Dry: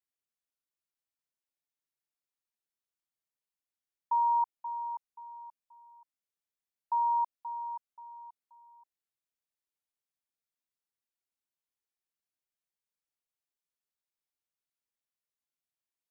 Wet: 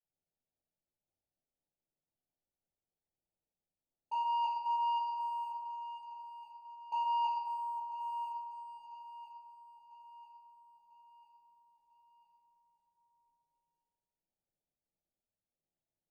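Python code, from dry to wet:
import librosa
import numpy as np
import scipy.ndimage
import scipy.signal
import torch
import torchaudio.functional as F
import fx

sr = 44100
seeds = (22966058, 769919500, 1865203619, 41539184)

y = scipy.signal.sosfilt(scipy.signal.butter(16, 870.0, 'lowpass', fs=sr, output='sos'), x)
y = fx.level_steps(y, sr, step_db=12)
y = fx.leveller(y, sr, passes=2)
y = fx.echo_feedback(y, sr, ms=996, feedback_pct=51, wet_db=-13.0)
y = fx.room_shoebox(y, sr, seeds[0], volume_m3=780.0, walls='mixed', distance_m=4.8)
y = y * librosa.db_to_amplitude(2.0)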